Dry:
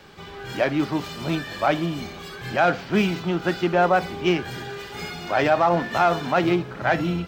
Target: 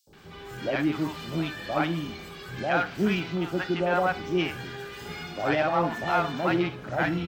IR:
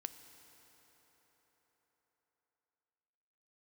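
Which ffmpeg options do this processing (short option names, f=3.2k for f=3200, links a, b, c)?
-filter_complex "[0:a]acrossover=split=700|5800[a][b][c];[a]adelay=70[d];[b]adelay=130[e];[d][e][c]amix=inputs=3:normalize=0[f];[1:a]atrim=start_sample=2205,atrim=end_sample=3969[g];[f][g]afir=irnorm=-1:irlink=0"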